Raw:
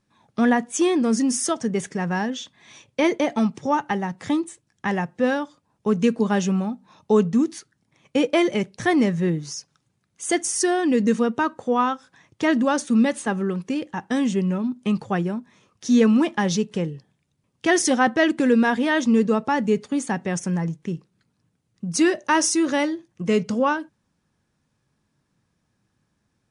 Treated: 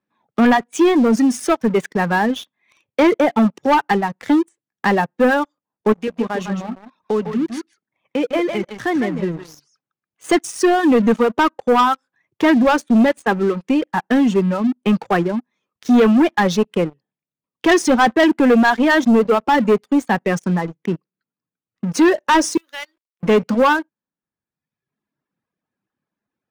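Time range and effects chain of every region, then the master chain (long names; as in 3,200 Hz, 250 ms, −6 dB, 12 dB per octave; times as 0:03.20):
0:05.92–0:10.24: downward compressor 2 to 1, threshold −34 dBFS + single-tap delay 154 ms −4.5 dB
0:22.57–0:23.23: first difference + hum removal 74.52 Hz, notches 22 + log-companded quantiser 4 bits
whole clip: three-way crossover with the lows and the highs turned down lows −16 dB, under 180 Hz, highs −15 dB, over 3,200 Hz; reverb reduction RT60 1.2 s; leveller curve on the samples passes 3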